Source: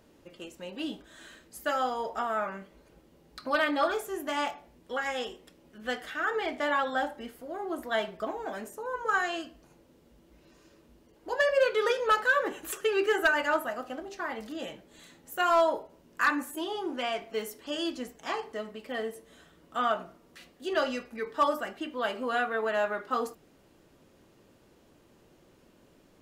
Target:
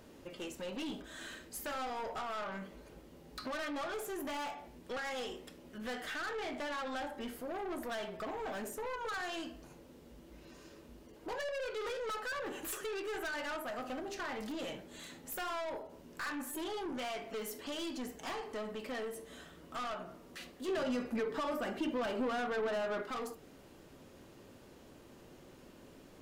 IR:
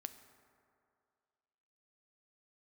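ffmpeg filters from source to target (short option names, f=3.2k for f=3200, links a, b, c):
-filter_complex "[0:a]acompressor=threshold=-36dB:ratio=3[a];[1:a]atrim=start_sample=2205,atrim=end_sample=3528[b];[a][b]afir=irnorm=-1:irlink=0,aeval=exprs='(tanh(178*val(0)+0.15)-tanh(0.15))/178':c=same,asettb=1/sr,asplit=3[c][d][e];[c]atrim=end=20.684[f];[d]atrim=start=20.68:end=23.03,asetpts=PTS-STARTPTS,afade=t=in:d=0.004:c=qsin,afade=t=out:st=2.346:d=0.004:c=qsin,equalizer=f=230:w=0.33:g=7[g];[e]atrim=start=23.026[h];[f][g]acrossfade=d=0.004:c1=hsin:c2=qsin[i];[i][h]acrossfade=d=0.004:c1=qsin:c2=hsin,volume=8.5dB"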